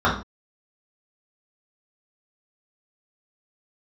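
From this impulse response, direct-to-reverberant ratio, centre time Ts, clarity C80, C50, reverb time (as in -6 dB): -8.5 dB, 29 ms, 12.0 dB, 7.0 dB, not exponential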